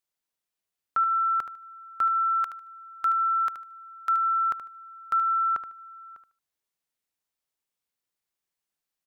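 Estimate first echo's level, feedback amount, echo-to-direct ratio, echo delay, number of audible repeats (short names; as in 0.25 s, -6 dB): -10.5 dB, 21%, -10.5 dB, 75 ms, 2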